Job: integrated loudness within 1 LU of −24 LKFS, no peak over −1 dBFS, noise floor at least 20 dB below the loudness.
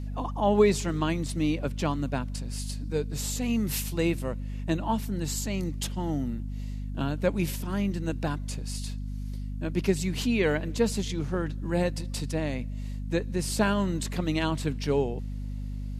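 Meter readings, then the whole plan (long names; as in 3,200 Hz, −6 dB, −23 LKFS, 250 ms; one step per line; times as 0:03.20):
mains hum 50 Hz; hum harmonics up to 250 Hz; level of the hum −31 dBFS; integrated loudness −29.5 LKFS; sample peak −10.0 dBFS; target loudness −24.0 LKFS
→ mains-hum notches 50/100/150/200/250 Hz
level +5.5 dB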